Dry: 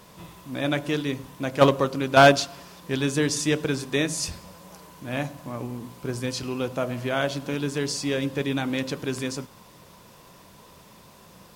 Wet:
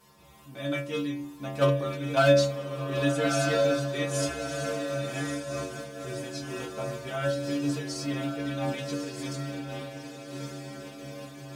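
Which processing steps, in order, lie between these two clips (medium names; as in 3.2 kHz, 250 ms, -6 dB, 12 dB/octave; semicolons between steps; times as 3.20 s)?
inharmonic resonator 68 Hz, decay 0.79 s, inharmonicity 0.008; echo that smears into a reverb 1209 ms, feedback 54%, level -5 dB; random flutter of the level, depth 60%; trim +8 dB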